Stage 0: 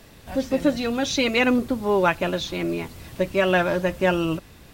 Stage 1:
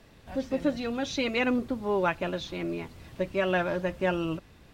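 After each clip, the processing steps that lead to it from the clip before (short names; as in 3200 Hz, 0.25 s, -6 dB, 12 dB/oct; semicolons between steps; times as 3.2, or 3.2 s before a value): high shelf 7200 Hz -11.5 dB; gain -6.5 dB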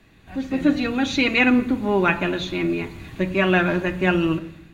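AGC gain up to 7.5 dB; reverb RT60 0.70 s, pre-delay 3 ms, DRR 7.5 dB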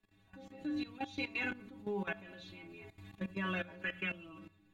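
metallic resonator 97 Hz, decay 0.35 s, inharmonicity 0.008; spectral gain 3.83–4.09, 1200–3500 Hz +12 dB; level quantiser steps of 16 dB; gain -4 dB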